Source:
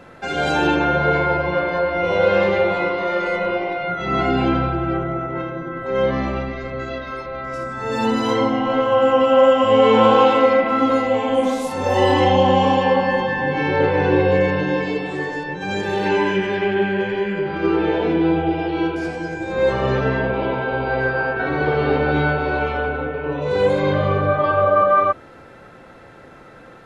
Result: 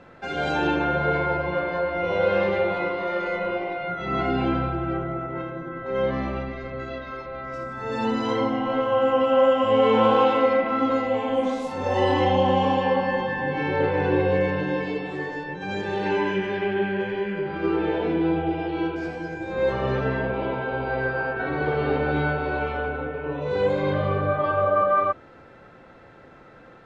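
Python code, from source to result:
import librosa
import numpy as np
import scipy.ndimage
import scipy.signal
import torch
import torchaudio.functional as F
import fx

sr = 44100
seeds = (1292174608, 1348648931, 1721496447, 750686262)

y = fx.air_absorb(x, sr, metres=80.0)
y = y * librosa.db_to_amplitude(-5.0)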